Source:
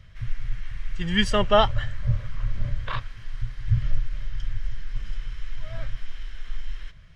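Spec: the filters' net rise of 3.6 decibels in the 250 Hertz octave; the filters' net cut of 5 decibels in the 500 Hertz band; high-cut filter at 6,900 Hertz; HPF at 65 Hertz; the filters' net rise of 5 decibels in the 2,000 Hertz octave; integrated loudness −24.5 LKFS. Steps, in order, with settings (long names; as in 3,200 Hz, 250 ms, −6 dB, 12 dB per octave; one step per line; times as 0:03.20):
high-pass filter 65 Hz
low-pass filter 6,900 Hz
parametric band 250 Hz +6.5 dB
parametric band 500 Hz −9 dB
parametric band 2,000 Hz +6.5 dB
level +1 dB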